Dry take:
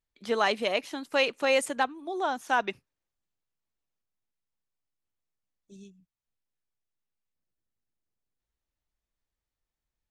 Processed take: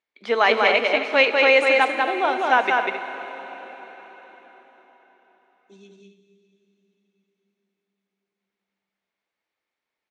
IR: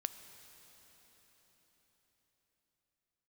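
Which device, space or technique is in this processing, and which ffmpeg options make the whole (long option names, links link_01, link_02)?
station announcement: -filter_complex "[0:a]highpass=340,lowpass=3700,equalizer=frequency=2200:width_type=o:width=0.21:gain=8,aecho=1:1:195.3|265.3:0.708|0.251[link_01];[1:a]atrim=start_sample=2205[link_02];[link_01][link_02]afir=irnorm=-1:irlink=0,volume=8.5dB"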